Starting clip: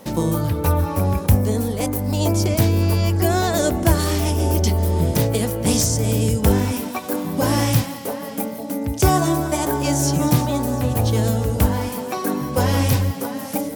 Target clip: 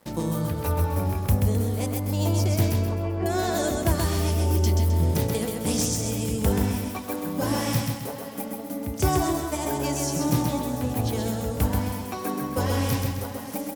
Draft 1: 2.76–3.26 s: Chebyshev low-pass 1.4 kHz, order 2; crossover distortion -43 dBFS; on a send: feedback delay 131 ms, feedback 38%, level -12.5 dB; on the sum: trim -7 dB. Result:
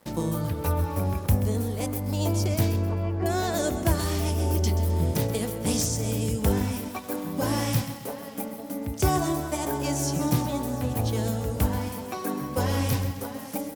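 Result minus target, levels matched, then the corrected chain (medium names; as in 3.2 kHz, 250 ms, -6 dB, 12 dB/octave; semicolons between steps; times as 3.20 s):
echo-to-direct -8.5 dB
2.76–3.26 s: Chebyshev low-pass 1.4 kHz, order 2; crossover distortion -43 dBFS; on a send: feedback delay 131 ms, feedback 38%, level -4 dB; on the sum: trim -7 dB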